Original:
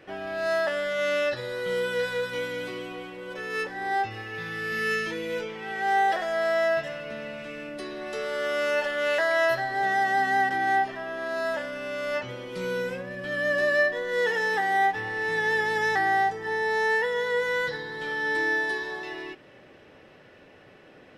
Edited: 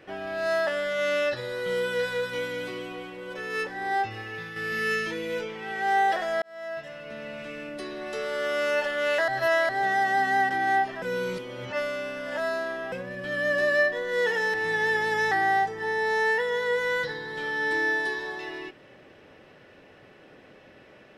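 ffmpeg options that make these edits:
ffmpeg -i in.wav -filter_complex "[0:a]asplit=8[link_01][link_02][link_03][link_04][link_05][link_06][link_07][link_08];[link_01]atrim=end=4.56,asetpts=PTS-STARTPTS,afade=type=out:start_time=4.3:duration=0.26:silence=0.473151[link_09];[link_02]atrim=start=4.56:end=6.42,asetpts=PTS-STARTPTS,afade=type=in:duration=0.004:curve=hsin:silence=0.473151,afade=type=out:start_time=1.856:duration=0.004:curve=hsin[link_10];[link_03]atrim=start=6.42:end=9.282,asetpts=PTS-STARTPTS,afade=type=in:duration=0.99[link_11];[link_04]atrim=start=9.278:end=9.692,asetpts=PTS-STARTPTS,areverse[link_12];[link_05]atrim=start=9.688:end=11.022[link_13];[link_06]atrim=start=11.018:end=12.922,asetpts=PTS-STARTPTS,areverse[link_14];[link_07]atrim=start=12.918:end=14.542[link_15];[link_08]atrim=start=15.178[link_16];[link_09][link_10][link_11]concat=n=3:v=0:a=1[link_17];[link_17][link_12]acrossfade=duration=0.004:curve1=hsin:curve2=hsin[link_18];[link_18][link_13]acrossfade=duration=0.004:curve1=hsin:curve2=hsin[link_19];[link_19][link_14]acrossfade=duration=0.004:curve1=hsin:curve2=hsin[link_20];[link_20][link_15]acrossfade=duration=0.004:curve1=hsin:curve2=hsin[link_21];[link_21][link_16]acrossfade=duration=0.004:curve1=hsin:curve2=hsin" out.wav

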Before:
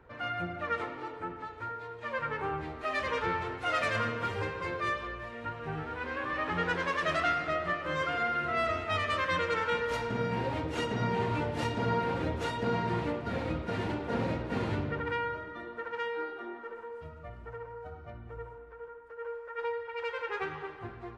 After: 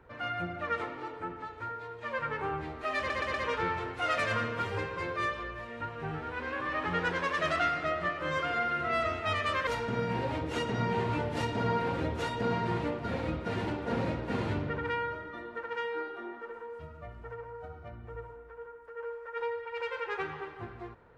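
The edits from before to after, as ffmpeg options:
ffmpeg -i in.wav -filter_complex "[0:a]asplit=5[link_01][link_02][link_03][link_04][link_05];[link_01]atrim=end=3.102[link_06];[link_02]atrim=start=2.978:end=3.102[link_07];[link_03]atrim=start=2.978:end=3.102[link_08];[link_04]atrim=start=2.978:end=9.312[link_09];[link_05]atrim=start=9.888[link_10];[link_06][link_07]acrossfade=duration=0.004:curve1=hsin:curve2=hsin[link_11];[link_11][link_08]acrossfade=duration=0.004:curve1=hsin:curve2=hsin[link_12];[link_12][link_09]acrossfade=duration=0.004:curve1=hsin:curve2=hsin[link_13];[link_13][link_10]acrossfade=duration=0.004:curve1=hsin:curve2=hsin" out.wav

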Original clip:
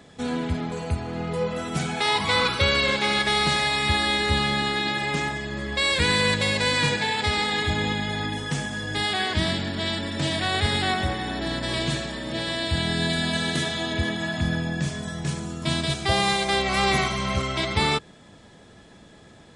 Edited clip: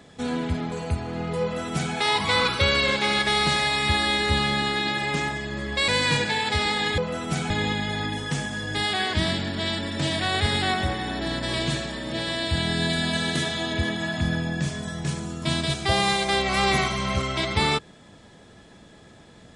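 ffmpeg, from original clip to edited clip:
ffmpeg -i in.wav -filter_complex "[0:a]asplit=4[link_01][link_02][link_03][link_04];[link_01]atrim=end=5.882[link_05];[link_02]atrim=start=6.598:end=7.702[link_06];[link_03]atrim=start=1.418:end=1.942[link_07];[link_04]atrim=start=7.698[link_08];[link_05][link_06]acrossfade=duration=0.004:curve1=hsin:curve2=hsin[link_09];[link_09][link_07]acrossfade=duration=0.004:curve1=hsin:curve2=hsin[link_10];[link_10][link_08]acrossfade=duration=0.004:curve1=hsin:curve2=hsin" out.wav

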